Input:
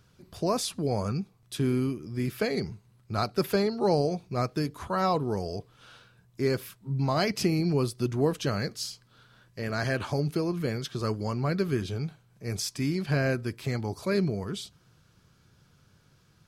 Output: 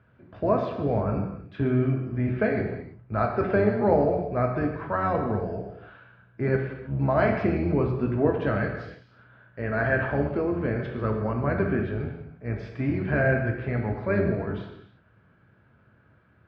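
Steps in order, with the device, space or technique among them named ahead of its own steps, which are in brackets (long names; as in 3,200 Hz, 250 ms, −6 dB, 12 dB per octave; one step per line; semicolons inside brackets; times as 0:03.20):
0:04.96–0:05.56: parametric band 920 Hz −4 dB 1.9 octaves
sub-octave bass pedal (sub-octave generator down 1 octave, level −3 dB; loudspeaker in its box 89–2,300 Hz, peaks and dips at 110 Hz +4 dB, 150 Hz −4 dB, 620 Hz +6 dB, 1,600 Hz +6 dB)
reverb whose tail is shaped and stops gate 360 ms falling, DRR 1.5 dB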